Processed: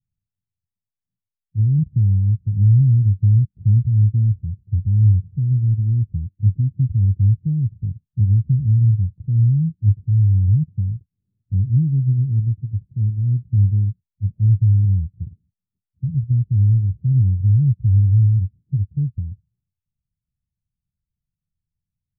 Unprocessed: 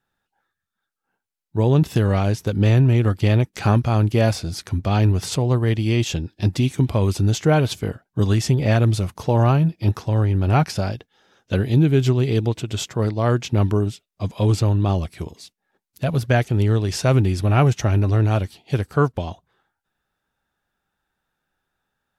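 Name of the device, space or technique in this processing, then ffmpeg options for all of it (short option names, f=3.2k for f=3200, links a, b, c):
the neighbour's flat through the wall: -af "lowpass=f=160:w=0.5412,lowpass=f=160:w=1.3066,equalizer=f=100:t=o:w=0.77:g=5"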